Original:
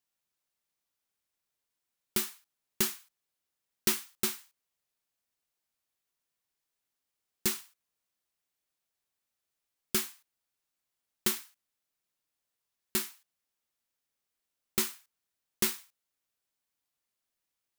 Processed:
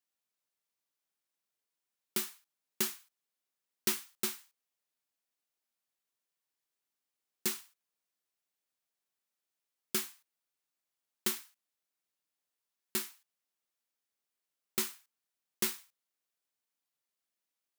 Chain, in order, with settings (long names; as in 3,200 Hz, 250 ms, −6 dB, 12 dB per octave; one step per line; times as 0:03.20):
high-pass filter 170 Hz
level −3.5 dB